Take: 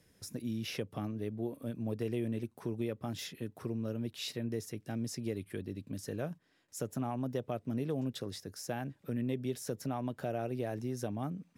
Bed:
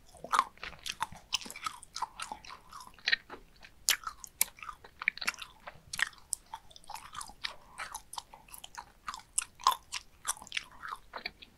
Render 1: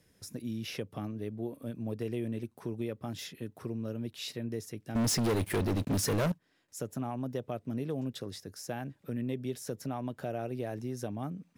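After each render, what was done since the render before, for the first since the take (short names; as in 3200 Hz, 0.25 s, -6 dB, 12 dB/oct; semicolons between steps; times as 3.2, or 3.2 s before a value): 4.95–6.32 sample leveller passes 5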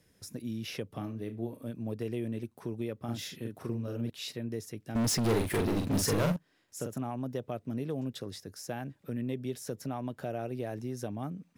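0.87–1.68 flutter echo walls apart 6 m, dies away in 0.23 s; 3.04–4.1 doubler 43 ms -2.5 dB; 5.2–6.98 doubler 45 ms -4 dB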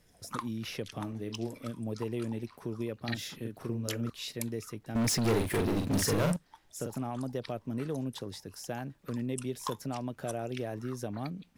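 add bed -11 dB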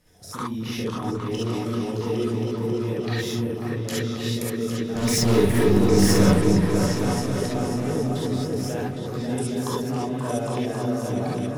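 on a send: repeats that get brighter 0.27 s, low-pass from 400 Hz, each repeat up 2 oct, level 0 dB; on the sum: non-linear reverb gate 90 ms rising, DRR -5.5 dB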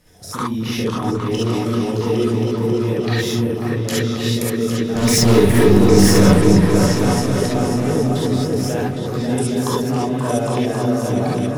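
gain +7 dB; limiter -1 dBFS, peak gain reduction 3 dB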